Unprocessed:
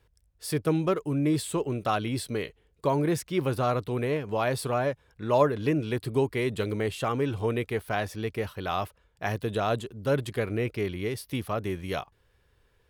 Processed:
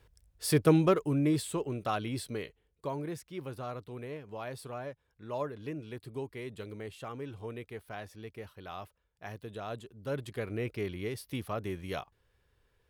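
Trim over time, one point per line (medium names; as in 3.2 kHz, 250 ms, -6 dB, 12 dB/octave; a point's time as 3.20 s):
0.70 s +2.5 dB
1.61 s -5.5 dB
2.24 s -5.5 dB
3.24 s -13.5 dB
9.57 s -13.5 dB
10.70 s -5.5 dB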